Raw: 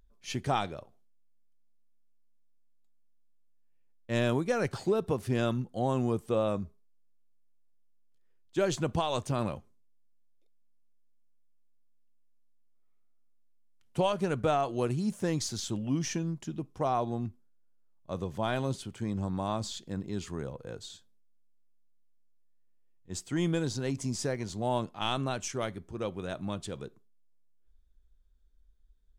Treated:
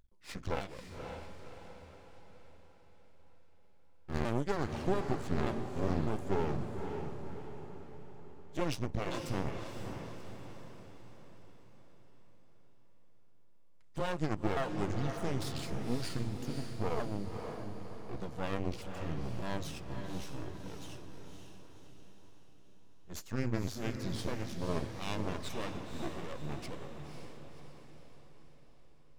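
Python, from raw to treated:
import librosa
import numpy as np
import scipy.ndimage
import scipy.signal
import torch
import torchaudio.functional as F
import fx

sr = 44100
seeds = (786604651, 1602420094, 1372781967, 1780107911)

y = fx.pitch_ramps(x, sr, semitones=-8.5, every_ms=607)
y = np.maximum(y, 0.0)
y = fx.echo_diffused(y, sr, ms=539, feedback_pct=51, wet_db=-6)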